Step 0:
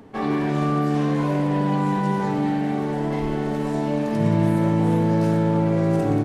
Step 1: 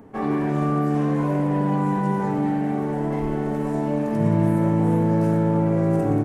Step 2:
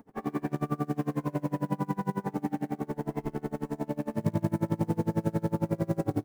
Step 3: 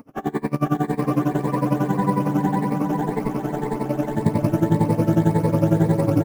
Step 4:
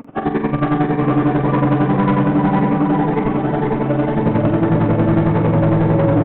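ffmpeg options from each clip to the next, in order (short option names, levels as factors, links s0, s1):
-af "equalizer=f=4000:t=o:w=1.4:g=-11"
-af "acrusher=bits=7:mode=log:mix=0:aa=0.000001,aeval=exprs='val(0)*pow(10,-29*(0.5-0.5*cos(2*PI*11*n/s))/20)':c=same,volume=0.668"
-filter_complex "[0:a]afftfilt=real='re*pow(10,10/40*sin(2*PI*(0.93*log(max(b,1)*sr/1024/100)/log(2)-(1.8)*(pts-256)/sr)))':imag='im*pow(10,10/40*sin(2*PI*(0.93*log(max(b,1)*sr/1024/100)/log(2)-(1.8)*(pts-256)/sr)))':win_size=1024:overlap=0.75,asplit=2[s0][s1];[s1]aecho=0:1:480|864|1171|1417|1614:0.631|0.398|0.251|0.158|0.1[s2];[s0][s2]amix=inputs=2:normalize=0,volume=2.37"
-filter_complex "[0:a]aresample=8000,asoftclip=type=tanh:threshold=0.106,aresample=44100,asplit=2[s0][s1];[s1]adelay=45,volume=0.398[s2];[s0][s2]amix=inputs=2:normalize=0,volume=2.82"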